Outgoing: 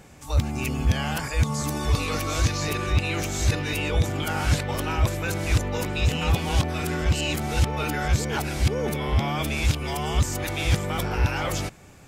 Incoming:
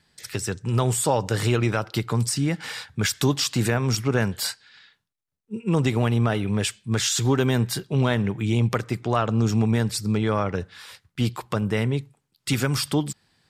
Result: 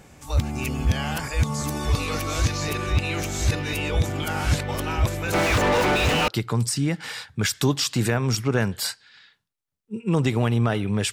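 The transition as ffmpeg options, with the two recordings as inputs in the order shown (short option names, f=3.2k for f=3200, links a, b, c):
-filter_complex "[0:a]asplit=3[a][b][c];[a]afade=t=out:st=5.32:d=0.02[d];[b]asplit=2[e][f];[f]highpass=f=720:p=1,volume=38dB,asoftclip=type=tanh:threshold=-12dB[g];[e][g]amix=inputs=2:normalize=0,lowpass=f=1.7k:p=1,volume=-6dB,afade=t=in:st=5.32:d=0.02,afade=t=out:st=6.28:d=0.02[h];[c]afade=t=in:st=6.28:d=0.02[i];[d][h][i]amix=inputs=3:normalize=0,apad=whole_dur=11.12,atrim=end=11.12,atrim=end=6.282[j];[1:a]atrim=start=1.878:end=6.72[k];[j][k]acrossfade=d=0.004:c1=hsin:c2=hsin"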